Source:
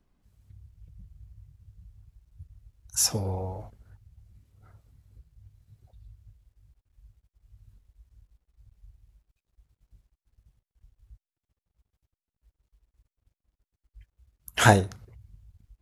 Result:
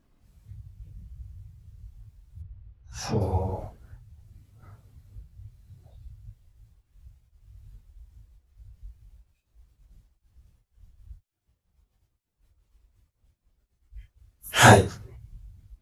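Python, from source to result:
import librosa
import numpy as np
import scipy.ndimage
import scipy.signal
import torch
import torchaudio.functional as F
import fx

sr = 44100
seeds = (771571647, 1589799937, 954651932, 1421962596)

y = fx.phase_scramble(x, sr, seeds[0], window_ms=100)
y = fx.air_absorb(y, sr, metres=310.0, at=(2.41, 3.2), fade=0.02)
y = y * librosa.db_to_amplitude(5.5)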